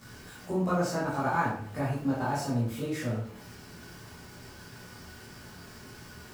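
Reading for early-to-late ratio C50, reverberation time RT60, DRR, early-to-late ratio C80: 3.0 dB, 0.55 s, -10.0 dB, 7.5 dB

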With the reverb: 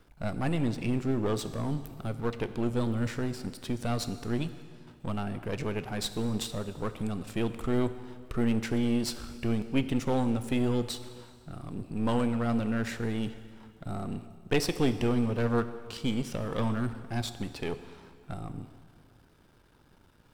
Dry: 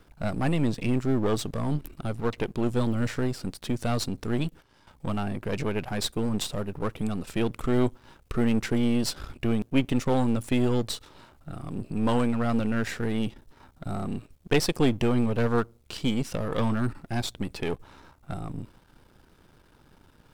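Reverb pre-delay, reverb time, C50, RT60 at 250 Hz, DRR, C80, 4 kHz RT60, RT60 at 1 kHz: 5 ms, 2.0 s, 12.0 dB, 2.0 s, 11.0 dB, 13.0 dB, 1.9 s, 2.0 s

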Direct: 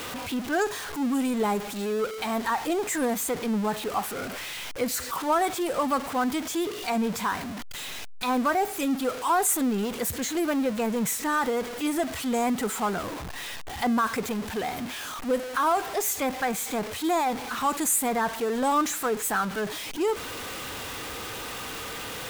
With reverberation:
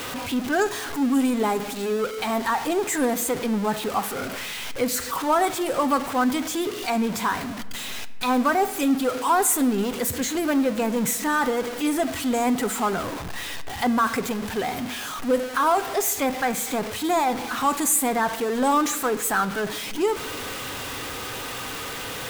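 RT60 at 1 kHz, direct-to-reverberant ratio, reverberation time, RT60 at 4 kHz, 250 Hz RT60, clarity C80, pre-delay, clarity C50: 1.3 s, 11.0 dB, 1.5 s, 0.85 s, 2.0 s, 17.5 dB, 7 ms, 16.0 dB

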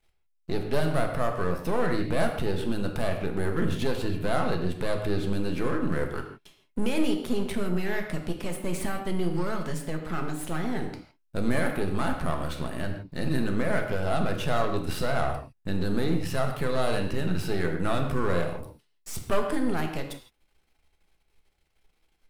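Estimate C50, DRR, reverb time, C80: 6.5 dB, 3.0 dB, no single decay rate, 8.5 dB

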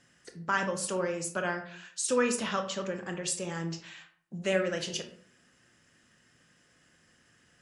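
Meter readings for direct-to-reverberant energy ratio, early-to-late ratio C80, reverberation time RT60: 5.5 dB, 14.0 dB, 0.55 s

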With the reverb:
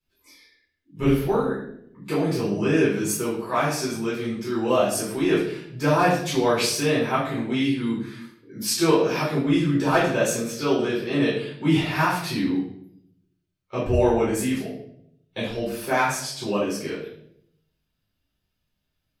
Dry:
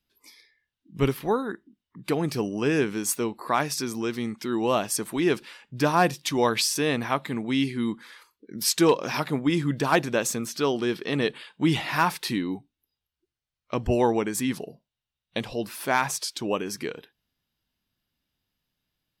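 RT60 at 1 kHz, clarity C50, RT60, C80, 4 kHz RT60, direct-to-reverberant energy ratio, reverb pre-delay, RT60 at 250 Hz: 0.60 s, 3.0 dB, 0.70 s, 7.0 dB, 0.55 s, -10.0 dB, 7 ms, 1.0 s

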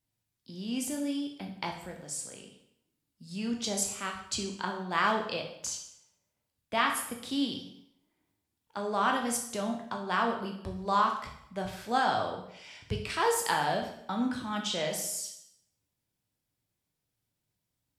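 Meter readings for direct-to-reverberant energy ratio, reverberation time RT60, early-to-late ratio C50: 1.5 dB, 0.70 s, 6.5 dB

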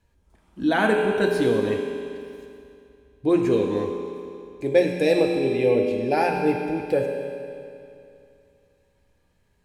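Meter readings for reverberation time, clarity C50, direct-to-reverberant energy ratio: 2.6 s, 2.5 dB, 1.0 dB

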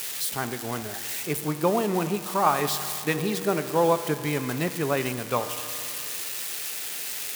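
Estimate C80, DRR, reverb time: 11.0 dB, 9.0 dB, 2.6 s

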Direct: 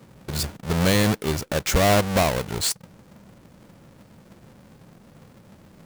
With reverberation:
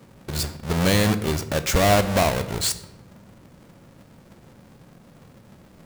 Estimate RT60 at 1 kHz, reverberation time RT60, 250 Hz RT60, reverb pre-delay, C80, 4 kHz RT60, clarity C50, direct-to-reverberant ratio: 0.90 s, 0.95 s, 1.2 s, 3 ms, 16.0 dB, 0.60 s, 13.5 dB, 10.0 dB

